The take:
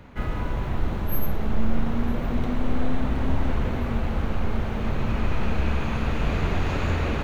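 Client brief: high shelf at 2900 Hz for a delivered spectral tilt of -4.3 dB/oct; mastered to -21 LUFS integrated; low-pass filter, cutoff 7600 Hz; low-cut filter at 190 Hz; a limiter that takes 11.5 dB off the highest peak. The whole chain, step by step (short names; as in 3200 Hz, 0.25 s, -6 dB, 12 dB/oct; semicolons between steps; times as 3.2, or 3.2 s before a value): HPF 190 Hz; LPF 7600 Hz; high shelf 2900 Hz +5 dB; gain +16 dB; limiter -12.5 dBFS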